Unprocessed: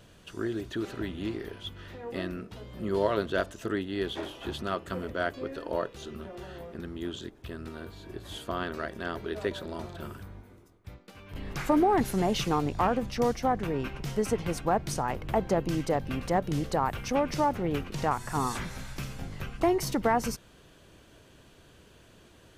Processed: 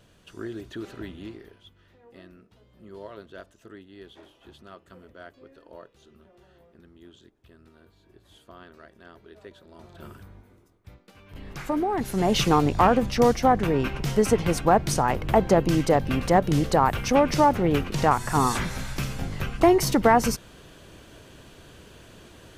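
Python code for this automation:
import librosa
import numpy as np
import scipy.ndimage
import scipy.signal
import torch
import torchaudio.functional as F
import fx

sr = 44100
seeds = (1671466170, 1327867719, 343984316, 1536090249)

y = fx.gain(x, sr, db=fx.line((1.11, -3.0), (1.75, -14.5), (9.65, -14.5), (10.07, -2.5), (11.97, -2.5), (12.39, 7.5)))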